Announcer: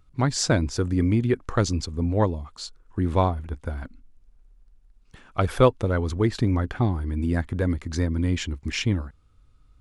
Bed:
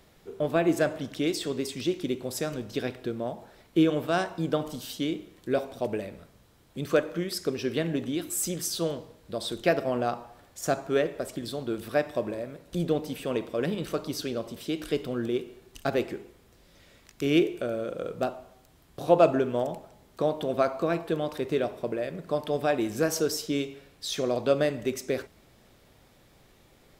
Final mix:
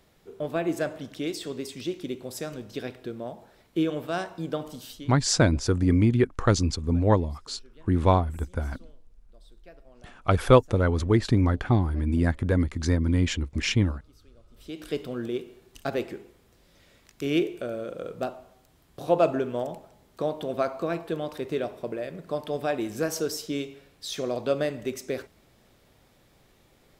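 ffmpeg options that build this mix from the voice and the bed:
-filter_complex "[0:a]adelay=4900,volume=1dB[a];[1:a]volume=22dB,afade=t=out:st=4.87:d=0.25:silence=0.0630957,afade=t=in:st=14.5:d=0.44:silence=0.0530884[b];[a][b]amix=inputs=2:normalize=0"

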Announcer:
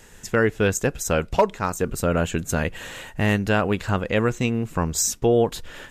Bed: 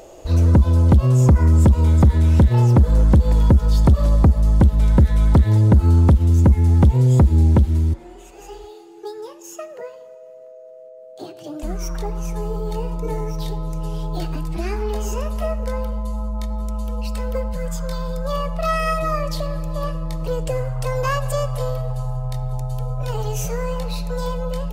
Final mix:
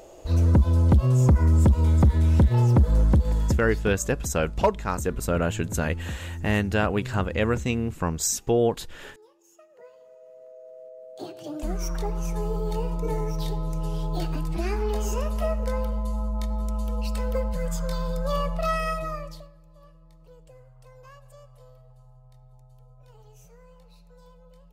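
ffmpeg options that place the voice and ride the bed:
-filter_complex "[0:a]adelay=3250,volume=-3dB[a];[1:a]volume=13.5dB,afade=t=out:st=3.01:d=0.96:silence=0.158489,afade=t=in:st=9.68:d=1.15:silence=0.11885,afade=t=out:st=18.45:d=1.06:silence=0.0562341[b];[a][b]amix=inputs=2:normalize=0"

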